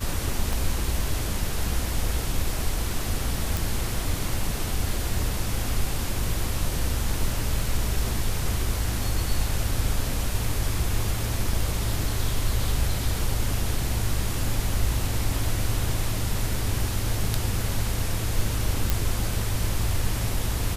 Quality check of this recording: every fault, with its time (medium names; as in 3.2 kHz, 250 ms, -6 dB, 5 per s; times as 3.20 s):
0.53 s: pop
3.57 s: pop
11.53 s: dropout 3 ms
18.90 s: pop